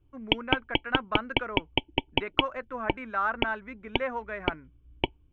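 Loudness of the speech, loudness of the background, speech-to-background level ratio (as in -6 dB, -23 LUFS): -34.5 LUFS, -31.0 LUFS, -3.5 dB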